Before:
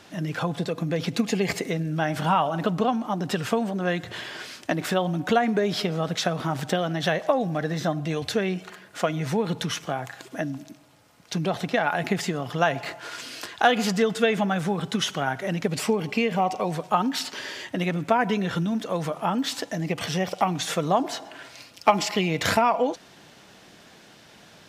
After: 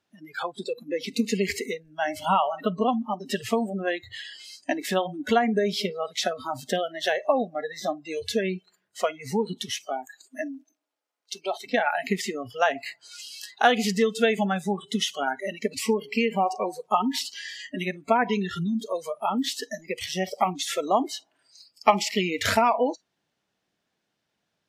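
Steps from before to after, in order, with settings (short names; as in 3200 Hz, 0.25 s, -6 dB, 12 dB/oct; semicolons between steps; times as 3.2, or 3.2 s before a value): spectral noise reduction 28 dB; 9.69–11.65 HPF 190 Hz -> 430 Hz 24 dB/oct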